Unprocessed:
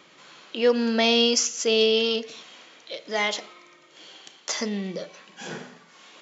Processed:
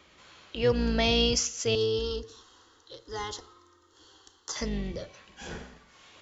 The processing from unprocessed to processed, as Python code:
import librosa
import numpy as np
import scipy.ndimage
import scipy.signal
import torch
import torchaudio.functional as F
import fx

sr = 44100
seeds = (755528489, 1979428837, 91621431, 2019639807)

y = fx.octave_divider(x, sr, octaves=2, level_db=0.0)
y = fx.fixed_phaser(y, sr, hz=630.0, stages=6, at=(1.75, 4.56))
y = y * librosa.db_to_amplitude(-5.0)